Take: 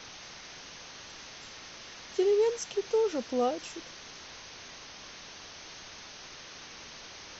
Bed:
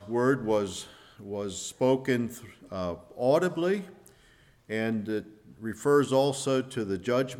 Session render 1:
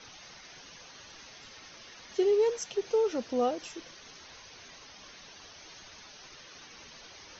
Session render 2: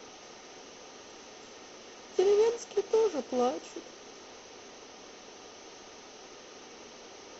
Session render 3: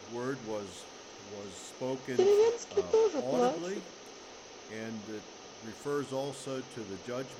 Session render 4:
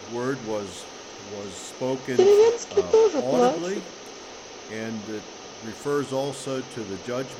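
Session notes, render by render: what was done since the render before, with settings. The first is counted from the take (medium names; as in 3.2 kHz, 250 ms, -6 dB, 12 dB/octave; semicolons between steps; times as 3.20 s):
noise reduction 9 dB, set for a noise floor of -48 dBFS
spectral levelling over time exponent 0.6; upward expansion 1.5:1, over -37 dBFS
add bed -11.5 dB
trim +8.5 dB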